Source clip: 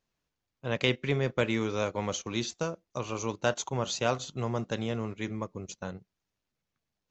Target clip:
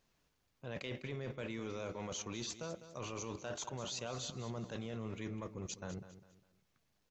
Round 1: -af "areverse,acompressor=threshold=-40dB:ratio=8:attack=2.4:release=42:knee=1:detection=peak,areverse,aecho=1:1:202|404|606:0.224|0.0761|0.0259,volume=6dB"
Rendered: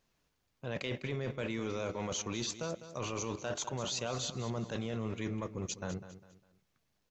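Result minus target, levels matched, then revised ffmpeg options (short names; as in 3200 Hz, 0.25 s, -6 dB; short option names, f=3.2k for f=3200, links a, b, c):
compressor: peak gain reduction -5.5 dB
-af "areverse,acompressor=threshold=-46.5dB:ratio=8:attack=2.4:release=42:knee=1:detection=peak,areverse,aecho=1:1:202|404|606:0.224|0.0761|0.0259,volume=6dB"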